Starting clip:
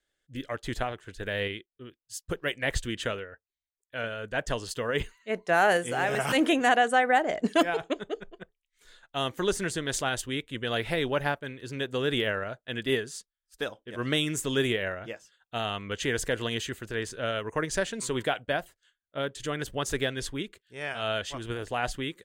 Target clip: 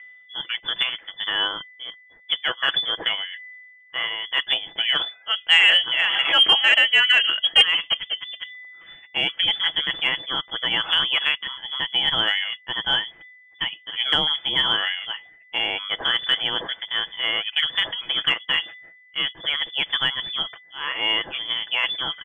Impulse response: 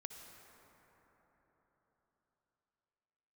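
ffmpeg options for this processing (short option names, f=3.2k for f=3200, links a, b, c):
-af "aecho=1:1:6:0.39,aeval=exprs='val(0)+0.00141*sin(2*PI*1500*n/s)':c=same,areverse,acompressor=mode=upward:threshold=-36dB:ratio=2.5,areverse,lowpass=f=3k:t=q:w=0.5098,lowpass=f=3k:t=q:w=0.6013,lowpass=f=3k:t=q:w=0.9,lowpass=f=3k:t=q:w=2.563,afreqshift=-3500,acontrast=67"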